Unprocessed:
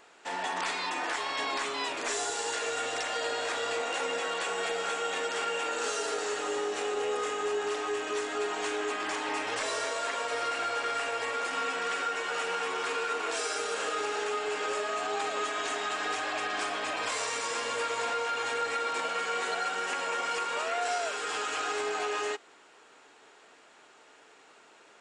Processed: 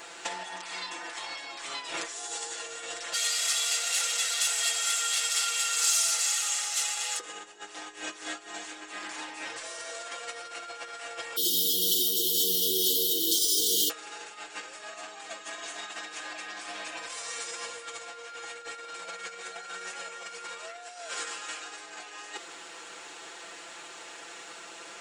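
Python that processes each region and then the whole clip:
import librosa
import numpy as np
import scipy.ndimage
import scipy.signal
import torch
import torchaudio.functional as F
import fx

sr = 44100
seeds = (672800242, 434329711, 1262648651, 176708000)

y = fx.chain(x, sr, fx.lower_of_two(delay_ms=1.5),
    fx.lowpass(hz=9100.0, slope=12),
    fx.differentiator(), at=(3.13, 7.2))
y = fx.chain(y, sr, fx.resample_bad(factor=3, down='filtered', up='hold'),
    fx.brickwall_bandstop(low_hz=450.0, high_hz=2900.0), at=(11.36, 13.9))
y = fx.over_compress(y, sr, threshold_db=-39.0, ratio=-0.5)
y = fx.high_shelf(y, sr, hz=2700.0, db=9.5)
y = y + 0.89 * np.pad(y, (int(5.9 * sr / 1000.0), 0))[:len(y)]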